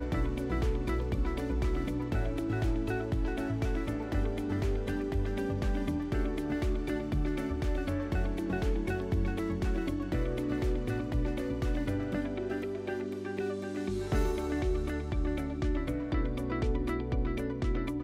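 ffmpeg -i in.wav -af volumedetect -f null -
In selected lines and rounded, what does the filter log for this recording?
mean_volume: -31.1 dB
max_volume: -18.5 dB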